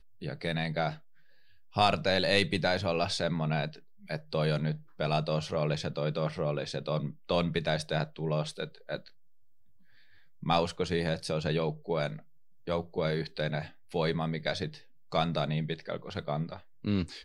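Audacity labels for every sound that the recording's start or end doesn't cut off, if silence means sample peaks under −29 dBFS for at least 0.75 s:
1.760000	8.960000	sound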